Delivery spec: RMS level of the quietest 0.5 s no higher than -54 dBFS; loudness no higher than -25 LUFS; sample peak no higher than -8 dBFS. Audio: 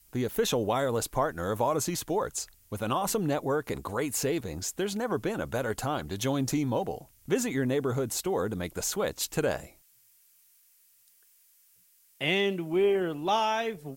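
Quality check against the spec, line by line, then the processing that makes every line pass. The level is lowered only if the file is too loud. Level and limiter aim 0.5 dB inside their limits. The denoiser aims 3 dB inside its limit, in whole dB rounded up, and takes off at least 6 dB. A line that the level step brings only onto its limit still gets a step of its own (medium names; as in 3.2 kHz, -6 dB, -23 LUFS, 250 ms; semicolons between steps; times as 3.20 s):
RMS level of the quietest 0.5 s -63 dBFS: pass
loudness -29.5 LUFS: pass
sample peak -12.0 dBFS: pass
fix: none needed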